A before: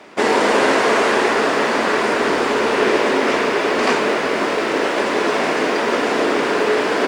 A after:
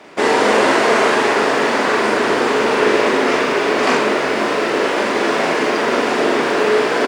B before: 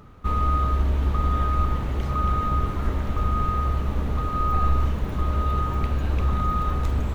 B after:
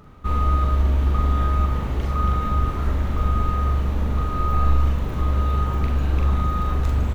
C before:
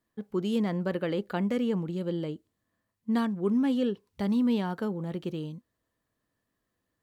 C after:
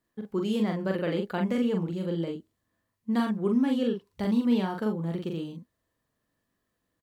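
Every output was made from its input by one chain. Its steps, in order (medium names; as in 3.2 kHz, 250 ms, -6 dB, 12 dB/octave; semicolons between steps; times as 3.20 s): doubling 42 ms -3.5 dB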